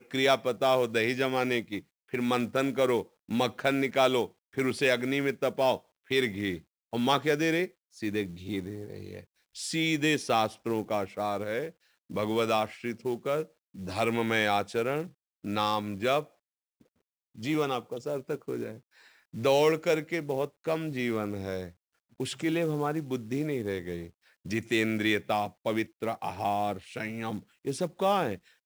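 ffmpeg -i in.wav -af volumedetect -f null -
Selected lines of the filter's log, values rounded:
mean_volume: -30.2 dB
max_volume: -10.4 dB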